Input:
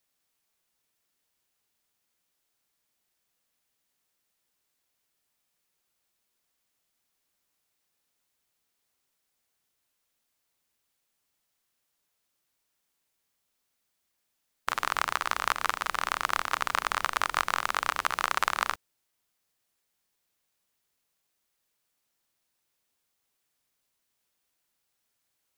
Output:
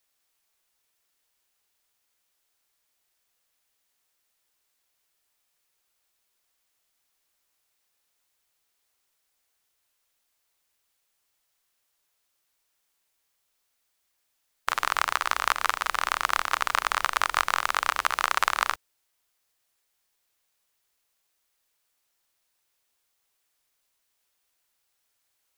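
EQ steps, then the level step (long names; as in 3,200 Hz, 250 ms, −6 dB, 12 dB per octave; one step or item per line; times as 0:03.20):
parametric band 180 Hz −9 dB 1.9 octaves
+3.5 dB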